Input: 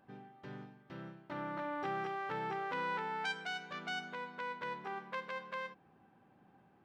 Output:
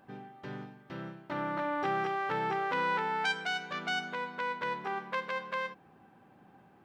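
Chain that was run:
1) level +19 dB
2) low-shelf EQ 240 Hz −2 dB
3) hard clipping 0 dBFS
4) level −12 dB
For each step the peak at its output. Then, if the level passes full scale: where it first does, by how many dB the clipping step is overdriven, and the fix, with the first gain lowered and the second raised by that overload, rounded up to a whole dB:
−6.0, −6.0, −6.0, −18.0 dBFS
no step passes full scale

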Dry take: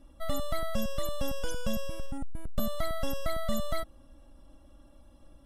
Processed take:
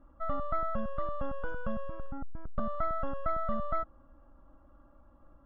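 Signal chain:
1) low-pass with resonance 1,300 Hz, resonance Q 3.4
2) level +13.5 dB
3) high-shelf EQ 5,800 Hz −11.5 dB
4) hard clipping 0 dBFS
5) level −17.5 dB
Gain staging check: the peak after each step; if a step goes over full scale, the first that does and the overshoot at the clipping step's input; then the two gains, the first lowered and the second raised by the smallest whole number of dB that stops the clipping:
−15.0, −1.5, −1.5, −1.5, −19.0 dBFS
no step passes full scale

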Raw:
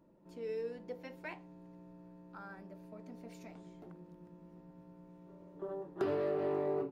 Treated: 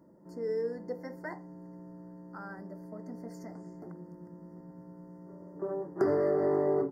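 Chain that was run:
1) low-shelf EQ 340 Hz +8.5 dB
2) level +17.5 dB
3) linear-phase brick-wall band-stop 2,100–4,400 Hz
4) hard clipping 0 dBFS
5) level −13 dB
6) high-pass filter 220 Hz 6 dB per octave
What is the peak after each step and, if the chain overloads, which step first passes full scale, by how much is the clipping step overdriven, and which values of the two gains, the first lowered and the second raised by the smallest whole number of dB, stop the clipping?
−20.0, −2.5, −2.5, −2.5, −15.5, −17.0 dBFS
no step passes full scale

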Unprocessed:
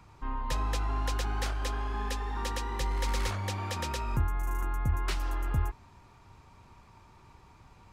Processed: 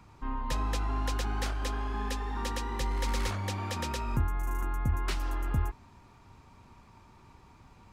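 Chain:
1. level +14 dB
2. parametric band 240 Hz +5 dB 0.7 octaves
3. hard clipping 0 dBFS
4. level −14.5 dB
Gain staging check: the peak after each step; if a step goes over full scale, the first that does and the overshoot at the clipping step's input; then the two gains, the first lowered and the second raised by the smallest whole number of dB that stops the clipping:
−5.0, −3.5, −3.5, −18.0 dBFS
no step passes full scale

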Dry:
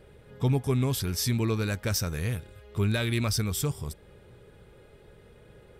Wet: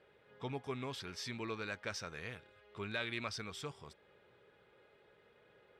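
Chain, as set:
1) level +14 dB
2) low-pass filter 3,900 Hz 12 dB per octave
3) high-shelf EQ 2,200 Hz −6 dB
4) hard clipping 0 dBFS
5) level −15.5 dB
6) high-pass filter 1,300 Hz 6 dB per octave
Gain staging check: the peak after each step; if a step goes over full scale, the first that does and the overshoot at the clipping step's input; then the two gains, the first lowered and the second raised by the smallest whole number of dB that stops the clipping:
−1.5, −1.5, −1.5, −1.5, −17.0, −22.5 dBFS
no step passes full scale

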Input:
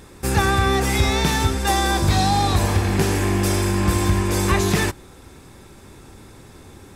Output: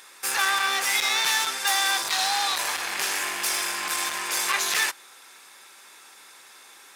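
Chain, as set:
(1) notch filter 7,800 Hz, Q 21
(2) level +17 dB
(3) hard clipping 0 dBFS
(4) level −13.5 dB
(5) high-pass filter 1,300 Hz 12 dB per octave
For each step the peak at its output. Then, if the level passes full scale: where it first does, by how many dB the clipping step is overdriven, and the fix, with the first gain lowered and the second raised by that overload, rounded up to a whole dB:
−8.0, +9.0, 0.0, −13.5, −10.0 dBFS
step 2, 9.0 dB
step 2 +8 dB, step 4 −4.5 dB

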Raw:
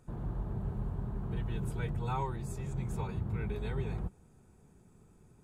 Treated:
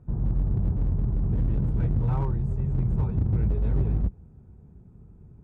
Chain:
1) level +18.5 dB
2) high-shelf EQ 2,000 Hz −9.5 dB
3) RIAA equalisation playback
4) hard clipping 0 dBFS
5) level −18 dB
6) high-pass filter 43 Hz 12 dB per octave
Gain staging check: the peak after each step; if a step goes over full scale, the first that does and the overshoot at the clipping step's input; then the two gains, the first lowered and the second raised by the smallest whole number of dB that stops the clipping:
−4.0, −4.5, +8.0, 0.0, −18.0, −13.5 dBFS
step 3, 8.0 dB
step 1 +10.5 dB, step 5 −10 dB

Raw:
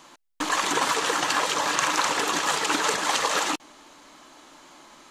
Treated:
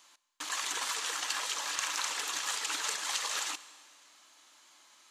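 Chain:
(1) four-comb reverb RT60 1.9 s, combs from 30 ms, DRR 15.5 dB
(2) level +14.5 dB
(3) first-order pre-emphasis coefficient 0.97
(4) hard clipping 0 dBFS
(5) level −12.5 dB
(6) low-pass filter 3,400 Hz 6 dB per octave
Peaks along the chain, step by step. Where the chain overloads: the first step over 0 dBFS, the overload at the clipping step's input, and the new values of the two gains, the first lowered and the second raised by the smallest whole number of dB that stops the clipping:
−6.0, +8.5, +4.0, 0.0, −12.5, −16.5 dBFS
step 2, 4.0 dB
step 2 +10.5 dB, step 5 −8.5 dB

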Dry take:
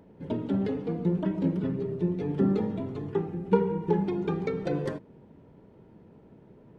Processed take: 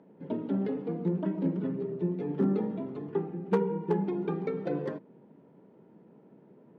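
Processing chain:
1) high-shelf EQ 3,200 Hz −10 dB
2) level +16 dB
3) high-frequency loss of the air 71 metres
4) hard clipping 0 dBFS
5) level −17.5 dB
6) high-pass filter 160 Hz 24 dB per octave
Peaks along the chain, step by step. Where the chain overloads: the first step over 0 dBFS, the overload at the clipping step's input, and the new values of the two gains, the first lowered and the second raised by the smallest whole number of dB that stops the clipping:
−9.0, +7.0, +7.0, 0.0, −17.5, −13.0 dBFS
step 2, 7.0 dB
step 2 +9 dB, step 5 −10.5 dB

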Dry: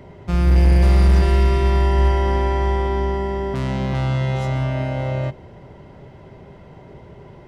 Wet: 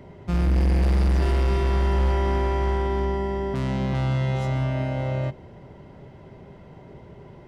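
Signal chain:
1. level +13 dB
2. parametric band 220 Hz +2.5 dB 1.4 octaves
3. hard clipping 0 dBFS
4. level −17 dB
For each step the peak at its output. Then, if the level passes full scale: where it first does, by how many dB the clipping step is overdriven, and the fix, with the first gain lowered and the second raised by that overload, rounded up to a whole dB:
+5.0, +6.5, 0.0, −17.0 dBFS
step 1, 6.5 dB
step 1 +6 dB, step 4 −10 dB

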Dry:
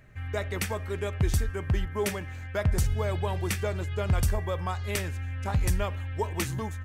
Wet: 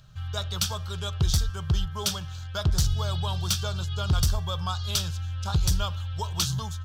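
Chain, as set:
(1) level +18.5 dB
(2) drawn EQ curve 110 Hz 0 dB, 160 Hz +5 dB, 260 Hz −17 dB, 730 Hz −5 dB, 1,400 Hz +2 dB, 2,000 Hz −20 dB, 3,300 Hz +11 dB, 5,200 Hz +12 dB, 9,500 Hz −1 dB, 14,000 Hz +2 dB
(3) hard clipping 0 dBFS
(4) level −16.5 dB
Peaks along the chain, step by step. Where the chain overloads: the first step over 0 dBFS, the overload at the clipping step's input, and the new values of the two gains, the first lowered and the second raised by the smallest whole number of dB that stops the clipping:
+2.5, +9.0, 0.0, −16.5 dBFS
step 1, 9.0 dB
step 1 +9.5 dB, step 4 −7.5 dB

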